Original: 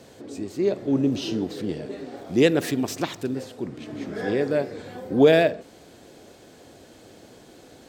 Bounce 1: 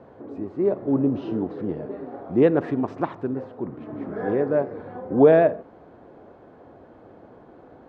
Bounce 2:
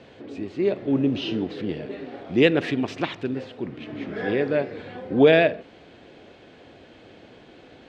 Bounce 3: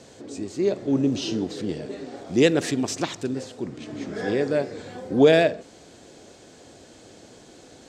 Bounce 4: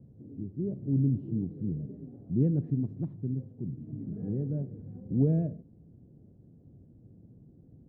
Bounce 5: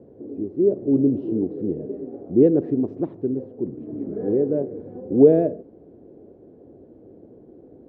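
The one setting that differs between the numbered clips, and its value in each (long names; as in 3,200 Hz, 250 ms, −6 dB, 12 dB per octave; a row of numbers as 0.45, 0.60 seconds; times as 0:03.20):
low-pass with resonance, frequency: 1,100, 2,800, 7,400, 150, 400 Hertz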